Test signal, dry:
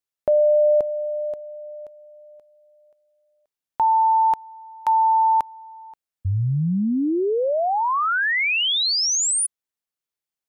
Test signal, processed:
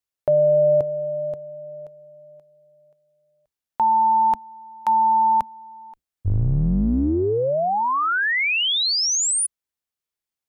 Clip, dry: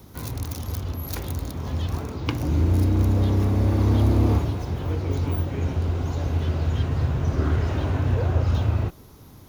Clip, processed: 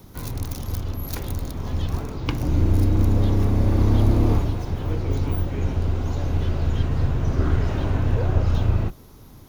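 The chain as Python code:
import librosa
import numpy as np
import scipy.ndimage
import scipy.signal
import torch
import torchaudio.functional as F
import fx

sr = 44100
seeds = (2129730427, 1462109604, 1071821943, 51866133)

y = fx.octave_divider(x, sr, octaves=2, level_db=-2.0)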